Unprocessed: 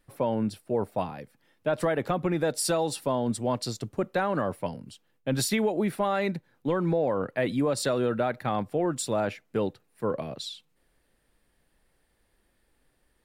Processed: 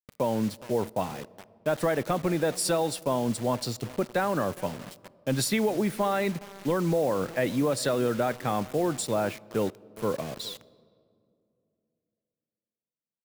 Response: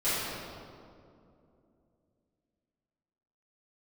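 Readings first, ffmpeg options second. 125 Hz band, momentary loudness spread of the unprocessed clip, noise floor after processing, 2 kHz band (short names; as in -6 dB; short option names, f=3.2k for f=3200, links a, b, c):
0.0 dB, 8 LU, under -85 dBFS, +0.5 dB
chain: -filter_complex "[0:a]asplit=2[a][b];[b]adelay=413,lowpass=f=1.5k:p=1,volume=-20dB,asplit=2[c][d];[d]adelay=413,lowpass=f=1.5k:p=1,volume=0.35,asplit=2[e][f];[f]adelay=413,lowpass=f=1.5k:p=1,volume=0.35[g];[c][e][g]amix=inputs=3:normalize=0[h];[a][h]amix=inputs=2:normalize=0,acrusher=bits=6:mix=0:aa=0.000001,asplit=2[i][j];[1:a]atrim=start_sample=2205[k];[j][k]afir=irnorm=-1:irlink=0,volume=-34dB[l];[i][l]amix=inputs=2:normalize=0"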